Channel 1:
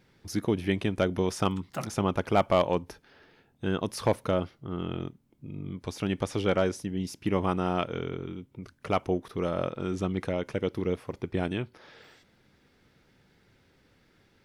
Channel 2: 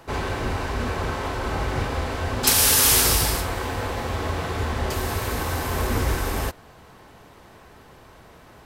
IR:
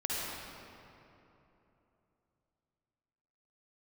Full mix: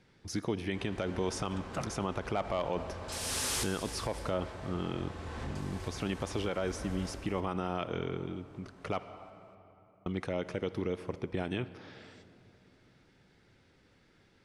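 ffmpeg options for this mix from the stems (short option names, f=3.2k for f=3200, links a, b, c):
-filter_complex "[0:a]acrossover=split=480[a][b];[a]acompressor=threshold=-31dB:ratio=2[c];[c][b]amix=inputs=2:normalize=0,volume=-2dB,asplit=3[d][e][f];[d]atrim=end=9.04,asetpts=PTS-STARTPTS,afade=t=out:st=9.036:d=0.004:c=hsin[g];[e]atrim=start=9.04:end=10.06,asetpts=PTS-STARTPTS,volume=0[h];[f]atrim=start=10.06,asetpts=PTS-STARTPTS,afade=t=in:d=0.004:c=hsin[i];[g][h][i]concat=n=3:v=0:a=1,asplit=3[j][k][l];[k]volume=-21dB[m];[1:a]asoftclip=type=tanh:threshold=-16.5dB,adelay=650,volume=-11dB,asplit=3[n][o][p];[o]volume=-18.5dB[q];[p]volume=-13dB[r];[l]apad=whole_len=410169[s];[n][s]sidechaincompress=threshold=-46dB:ratio=8:attack=16:release=421[t];[2:a]atrim=start_sample=2205[u];[m][q]amix=inputs=2:normalize=0[v];[v][u]afir=irnorm=-1:irlink=0[w];[r]aecho=0:1:246:1[x];[j][t][w][x]amix=inputs=4:normalize=0,lowpass=f=9.9k:w=0.5412,lowpass=f=9.9k:w=1.3066,alimiter=limit=-22.5dB:level=0:latency=1:release=52"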